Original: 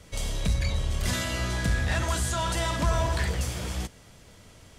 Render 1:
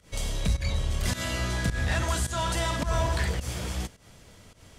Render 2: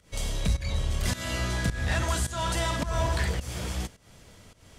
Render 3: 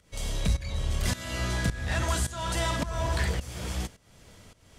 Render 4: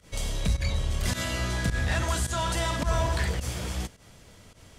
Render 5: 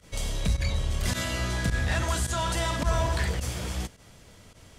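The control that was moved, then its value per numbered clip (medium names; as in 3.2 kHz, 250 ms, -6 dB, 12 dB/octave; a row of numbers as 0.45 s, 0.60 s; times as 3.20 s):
volume shaper, release: 144 ms, 246 ms, 452 ms, 93 ms, 61 ms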